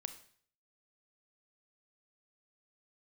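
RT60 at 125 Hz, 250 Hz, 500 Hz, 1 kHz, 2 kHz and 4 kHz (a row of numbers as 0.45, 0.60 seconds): 0.65, 0.55, 0.55, 0.55, 0.55, 0.55 seconds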